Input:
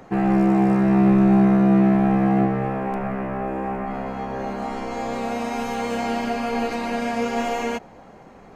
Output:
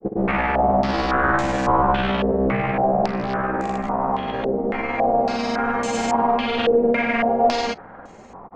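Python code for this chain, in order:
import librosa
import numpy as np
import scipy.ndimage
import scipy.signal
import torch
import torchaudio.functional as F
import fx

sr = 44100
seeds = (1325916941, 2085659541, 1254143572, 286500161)

y = 10.0 ** (-19.5 / 20.0) * (np.abs((x / 10.0 ** (-19.5 / 20.0) + 3.0) % 4.0 - 2.0) - 1.0)
y = fx.granulator(y, sr, seeds[0], grain_ms=100.0, per_s=20.0, spray_ms=100.0, spread_st=0)
y = fx.filter_held_lowpass(y, sr, hz=3.6, low_hz=460.0, high_hz=7200.0)
y = y * librosa.db_to_amplitude(3.5)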